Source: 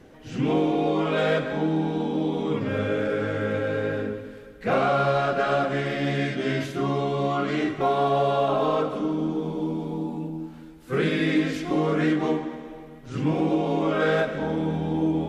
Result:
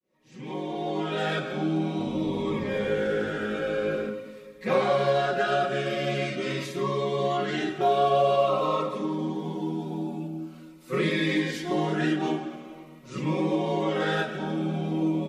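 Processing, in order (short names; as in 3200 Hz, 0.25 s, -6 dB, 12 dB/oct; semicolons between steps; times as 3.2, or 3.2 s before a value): opening faded in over 1.41 s; HPF 140 Hz 6 dB/oct; low shelf 200 Hz -6 dB; comb 5.4 ms, depth 79%; 1.9–4.1 frequency-shifting echo 85 ms, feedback 51%, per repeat -54 Hz, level -11 dB; cascading phaser falling 0.46 Hz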